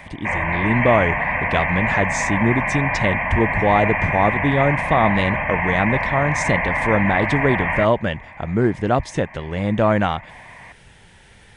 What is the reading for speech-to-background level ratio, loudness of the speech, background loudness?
0.5 dB, −21.0 LKFS, −21.5 LKFS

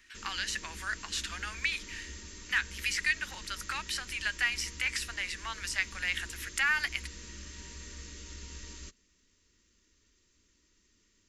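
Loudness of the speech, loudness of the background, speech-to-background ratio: −33.0 LKFS, −46.0 LKFS, 13.0 dB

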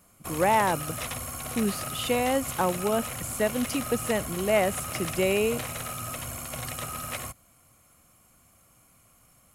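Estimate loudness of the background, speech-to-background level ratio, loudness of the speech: −34.0 LKFS, 6.5 dB, −27.5 LKFS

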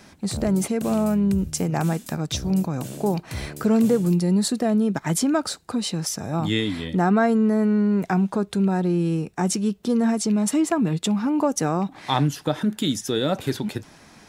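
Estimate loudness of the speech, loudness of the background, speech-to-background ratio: −23.0 LKFS, −36.5 LKFS, 13.5 dB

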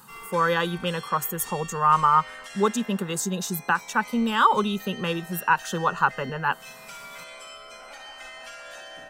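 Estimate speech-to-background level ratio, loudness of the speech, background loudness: 16.5 dB, −24.5 LKFS, −41.0 LKFS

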